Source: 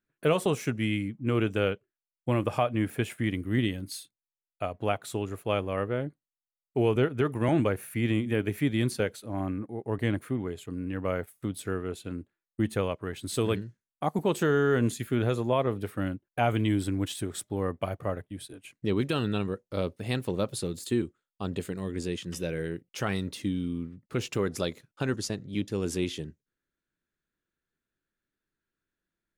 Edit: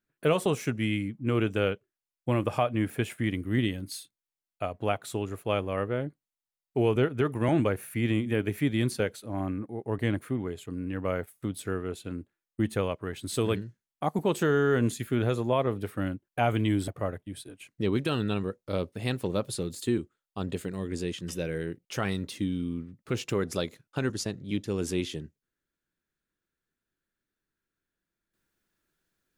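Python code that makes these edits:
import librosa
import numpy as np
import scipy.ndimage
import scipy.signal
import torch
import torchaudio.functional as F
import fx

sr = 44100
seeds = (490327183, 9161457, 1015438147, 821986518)

y = fx.edit(x, sr, fx.cut(start_s=16.88, length_s=1.04), tone=tone)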